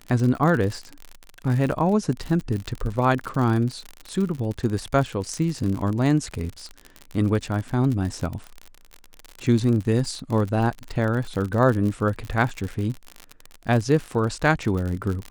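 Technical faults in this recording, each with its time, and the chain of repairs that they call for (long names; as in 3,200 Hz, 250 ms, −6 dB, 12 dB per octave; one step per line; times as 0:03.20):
surface crackle 56 per second −27 dBFS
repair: click removal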